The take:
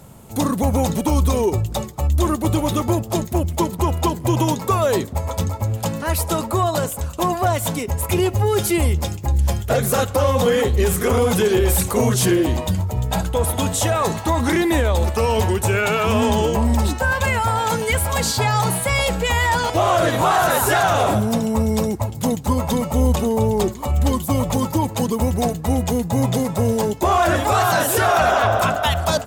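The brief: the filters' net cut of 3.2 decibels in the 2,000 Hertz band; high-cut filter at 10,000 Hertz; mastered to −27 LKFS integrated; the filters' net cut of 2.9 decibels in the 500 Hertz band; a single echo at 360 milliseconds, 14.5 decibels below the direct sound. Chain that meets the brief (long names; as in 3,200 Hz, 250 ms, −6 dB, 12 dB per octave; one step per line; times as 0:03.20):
low-pass filter 10,000 Hz
parametric band 500 Hz −3.5 dB
parametric band 2,000 Hz −4 dB
single-tap delay 360 ms −14.5 dB
level −6.5 dB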